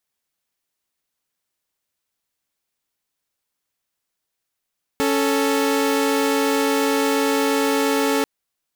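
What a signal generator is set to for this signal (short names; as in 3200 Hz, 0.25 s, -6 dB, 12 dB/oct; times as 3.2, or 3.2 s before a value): chord C#4/A4 saw, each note -17.5 dBFS 3.24 s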